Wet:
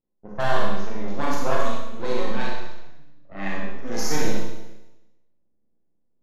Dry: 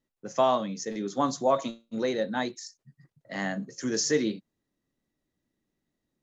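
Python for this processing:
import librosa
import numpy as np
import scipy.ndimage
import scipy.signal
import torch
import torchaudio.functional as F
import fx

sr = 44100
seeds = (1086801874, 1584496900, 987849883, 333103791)

p1 = np.maximum(x, 0.0)
p2 = p1 + fx.room_early_taps(p1, sr, ms=(34, 62), db=(-10.0, -7.5), dry=0)
p3 = fx.env_lowpass(p2, sr, base_hz=750.0, full_db=-23.0)
y = fx.rev_schroeder(p3, sr, rt60_s=0.99, comb_ms=30, drr_db=-3.0)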